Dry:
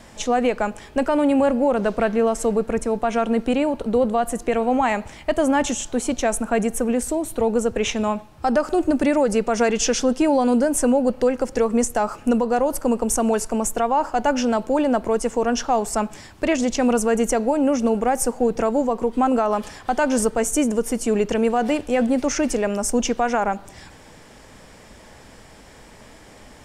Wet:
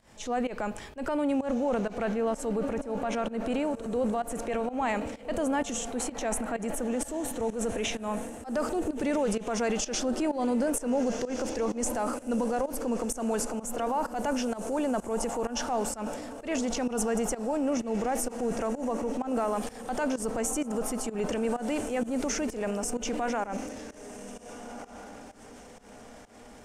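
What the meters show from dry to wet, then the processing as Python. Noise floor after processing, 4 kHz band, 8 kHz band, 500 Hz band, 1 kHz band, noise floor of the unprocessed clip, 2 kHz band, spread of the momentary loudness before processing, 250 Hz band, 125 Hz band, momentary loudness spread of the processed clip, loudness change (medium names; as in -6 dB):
-49 dBFS, -7.5 dB, -7.5 dB, -10.0 dB, -10.0 dB, -46 dBFS, -9.5 dB, 5 LU, -9.0 dB, -7.0 dB, 10 LU, -9.5 dB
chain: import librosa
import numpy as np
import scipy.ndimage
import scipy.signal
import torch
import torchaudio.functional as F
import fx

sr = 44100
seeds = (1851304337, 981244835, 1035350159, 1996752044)

y = fx.echo_diffused(x, sr, ms=1474, feedback_pct=42, wet_db=-13.0)
y = fx.transient(y, sr, attack_db=-4, sustain_db=7)
y = fx.volume_shaper(y, sr, bpm=128, per_beat=1, depth_db=-18, release_ms=173.0, shape='fast start')
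y = y * 10.0 ** (-9.0 / 20.0)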